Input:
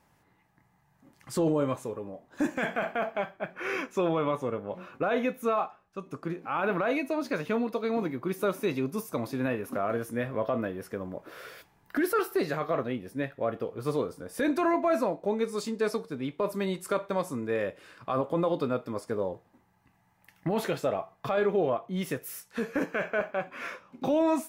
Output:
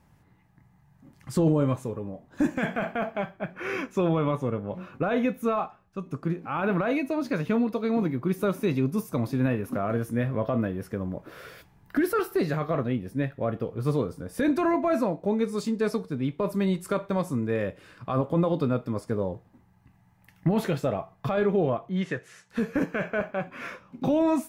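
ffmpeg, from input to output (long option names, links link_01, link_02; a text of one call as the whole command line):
ffmpeg -i in.wav -filter_complex "[0:a]asettb=1/sr,asplit=3[link_01][link_02][link_03];[link_01]atrim=end=21.894[link_04];[link_02]atrim=start=21.89:end=22.5,asetpts=PTS-STARTPTS,afade=type=in:duration=0.004:curve=qsin,afade=type=out:start_time=0.606:duration=0.004:curve=qsin,highpass=130,equalizer=frequency=150:width_type=q:width=4:gain=-7,equalizer=frequency=260:width_type=q:width=4:gain=-8,equalizer=frequency=1700:width_type=q:width=4:gain=8,equalizer=frequency=5400:width_type=q:width=4:gain=-7,lowpass=frequency=6700:width=0.5412,lowpass=frequency=6700:width=1.3066[link_05];[link_03]atrim=start=22.496[link_06];[link_04][link_05]acrossfade=duration=0.004:curve1=hsin:curve2=qsin[link_07];[link_07][link_06]acrossfade=duration=0.004:curve1=qsin:curve2=hsin,bass=frequency=250:gain=11,treble=frequency=4000:gain=-1" out.wav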